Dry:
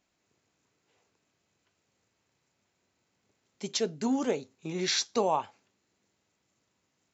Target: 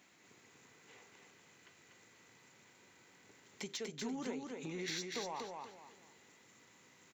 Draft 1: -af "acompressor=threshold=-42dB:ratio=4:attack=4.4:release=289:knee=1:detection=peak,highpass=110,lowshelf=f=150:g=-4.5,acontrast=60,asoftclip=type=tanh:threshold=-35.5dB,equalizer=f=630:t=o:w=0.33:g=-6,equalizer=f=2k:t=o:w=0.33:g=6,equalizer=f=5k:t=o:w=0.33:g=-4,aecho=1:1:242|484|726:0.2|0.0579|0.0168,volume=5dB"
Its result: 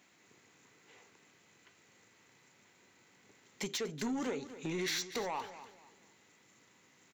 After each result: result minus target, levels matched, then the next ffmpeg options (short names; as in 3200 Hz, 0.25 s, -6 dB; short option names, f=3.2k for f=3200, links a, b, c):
compressor: peak gain reduction -8.5 dB; echo-to-direct -10 dB
-af "acompressor=threshold=-53.5dB:ratio=4:attack=4.4:release=289:knee=1:detection=peak,highpass=110,lowshelf=f=150:g=-4.5,acontrast=60,asoftclip=type=tanh:threshold=-35.5dB,equalizer=f=630:t=o:w=0.33:g=-6,equalizer=f=2k:t=o:w=0.33:g=6,equalizer=f=5k:t=o:w=0.33:g=-4,aecho=1:1:242|484|726:0.2|0.0579|0.0168,volume=5dB"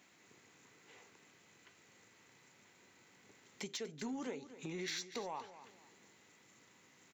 echo-to-direct -10 dB
-af "acompressor=threshold=-53.5dB:ratio=4:attack=4.4:release=289:knee=1:detection=peak,highpass=110,lowshelf=f=150:g=-4.5,acontrast=60,asoftclip=type=tanh:threshold=-35.5dB,equalizer=f=630:t=o:w=0.33:g=-6,equalizer=f=2k:t=o:w=0.33:g=6,equalizer=f=5k:t=o:w=0.33:g=-4,aecho=1:1:242|484|726|968:0.631|0.183|0.0531|0.0154,volume=5dB"